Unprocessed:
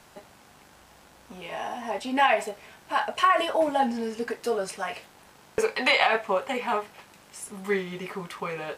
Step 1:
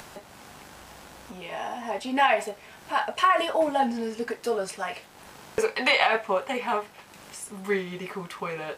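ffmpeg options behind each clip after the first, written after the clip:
-af "acompressor=mode=upward:threshold=-37dB:ratio=2.5"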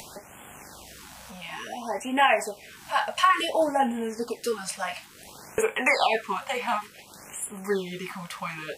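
-af "highshelf=f=3.5k:g=6.5,afftfilt=real='re*(1-between(b*sr/1024,330*pow(5000/330,0.5+0.5*sin(2*PI*0.57*pts/sr))/1.41,330*pow(5000/330,0.5+0.5*sin(2*PI*0.57*pts/sr))*1.41))':imag='im*(1-between(b*sr/1024,330*pow(5000/330,0.5+0.5*sin(2*PI*0.57*pts/sr))/1.41,330*pow(5000/330,0.5+0.5*sin(2*PI*0.57*pts/sr))*1.41))':win_size=1024:overlap=0.75"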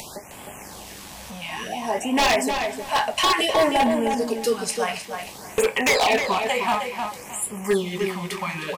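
-filter_complex "[0:a]aeval=exprs='0.119*(abs(mod(val(0)/0.119+3,4)-2)-1)':c=same,equalizer=f=1.4k:t=o:w=0.37:g=-7.5,asplit=2[a][b];[b]adelay=310,lowpass=f=3.5k:p=1,volume=-5.5dB,asplit=2[c][d];[d]adelay=310,lowpass=f=3.5k:p=1,volume=0.25,asplit=2[e][f];[f]adelay=310,lowpass=f=3.5k:p=1,volume=0.25[g];[a][c][e][g]amix=inputs=4:normalize=0,volume=6dB"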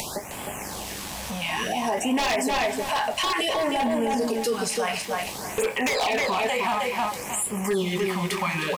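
-filter_complex "[0:a]asplit=2[a][b];[b]acompressor=threshold=-30dB:ratio=6,volume=-1.5dB[c];[a][c]amix=inputs=2:normalize=0,alimiter=limit=-17dB:level=0:latency=1:release=20,aeval=exprs='val(0)*gte(abs(val(0)),0.00531)':c=same"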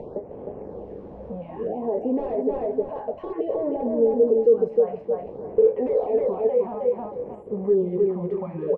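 -af "lowpass=f=470:t=q:w=4.9,volume=-3.5dB"

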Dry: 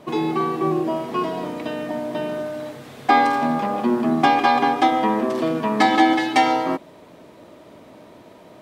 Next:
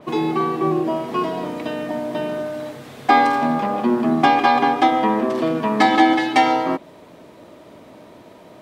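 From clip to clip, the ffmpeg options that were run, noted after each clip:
-af "adynamicequalizer=threshold=0.0112:dfrequency=4700:dqfactor=0.7:tfrequency=4700:tqfactor=0.7:attack=5:release=100:ratio=0.375:range=2:mode=cutabove:tftype=highshelf,volume=1.5dB"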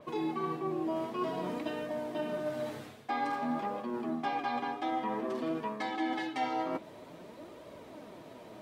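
-af "areverse,acompressor=threshold=-27dB:ratio=5,areverse,flanger=delay=1.8:depth=7.8:regen=45:speed=0.52:shape=sinusoidal,volume=-1.5dB"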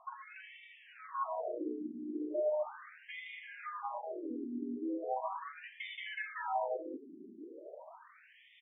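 -filter_complex "[0:a]asplit=2[a][b];[b]aecho=0:1:194:0.562[c];[a][c]amix=inputs=2:normalize=0,afftfilt=real='re*between(b*sr/1024,280*pow(2600/280,0.5+0.5*sin(2*PI*0.38*pts/sr))/1.41,280*pow(2600/280,0.5+0.5*sin(2*PI*0.38*pts/sr))*1.41)':imag='im*between(b*sr/1024,280*pow(2600/280,0.5+0.5*sin(2*PI*0.38*pts/sr))/1.41,280*pow(2600/280,0.5+0.5*sin(2*PI*0.38*pts/sr))*1.41)':win_size=1024:overlap=0.75,volume=1.5dB"

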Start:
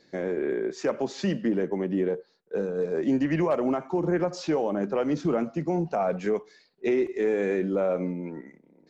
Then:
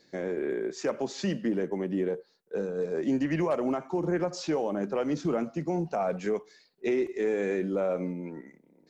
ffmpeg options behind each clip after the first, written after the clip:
-af "highshelf=f=6k:g=8.5,volume=-3dB"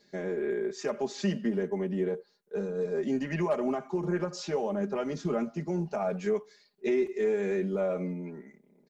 -af "aecho=1:1:4.9:0.82,volume=-3.5dB"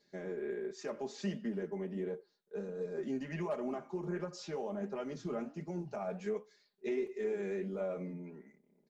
-af "flanger=delay=6.9:depth=9.1:regen=-71:speed=1.4:shape=sinusoidal,volume=-4dB"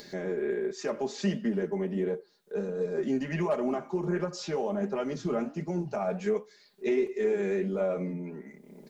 -af "acompressor=mode=upward:threshold=-44dB:ratio=2.5,volume=8.5dB"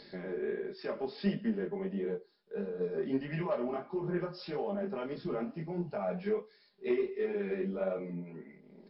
-af "flanger=delay=19.5:depth=5.7:speed=1.5,aeval=exprs='0.119*(cos(1*acos(clip(val(0)/0.119,-1,1)))-cos(1*PI/2))+0.0075*(cos(3*acos(clip(val(0)/0.119,-1,1)))-cos(3*PI/2))':c=same" -ar 12000 -c:a libmp3lame -b:a 32k

